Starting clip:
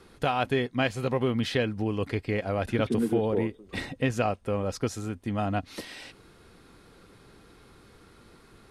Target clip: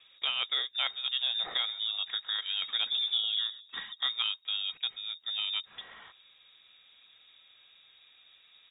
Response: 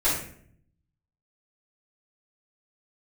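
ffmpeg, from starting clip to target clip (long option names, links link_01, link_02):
-filter_complex "[0:a]asplit=3[link_01][link_02][link_03];[link_01]afade=type=out:start_time=1.18:duration=0.02[link_04];[link_02]asplit=5[link_05][link_06][link_07][link_08][link_09];[link_06]adelay=130,afreqshift=-67,volume=-17dB[link_10];[link_07]adelay=260,afreqshift=-134,volume=-23.9dB[link_11];[link_08]adelay=390,afreqshift=-201,volume=-30.9dB[link_12];[link_09]adelay=520,afreqshift=-268,volume=-37.8dB[link_13];[link_05][link_10][link_11][link_12][link_13]amix=inputs=5:normalize=0,afade=type=in:start_time=1.18:duration=0.02,afade=type=out:start_time=3.59:duration=0.02[link_14];[link_03]afade=type=in:start_time=3.59:duration=0.02[link_15];[link_04][link_14][link_15]amix=inputs=3:normalize=0,lowpass=frequency=3200:width_type=q:width=0.5098,lowpass=frequency=3200:width_type=q:width=0.6013,lowpass=frequency=3200:width_type=q:width=0.9,lowpass=frequency=3200:width_type=q:width=2.563,afreqshift=-3800,volume=-5.5dB"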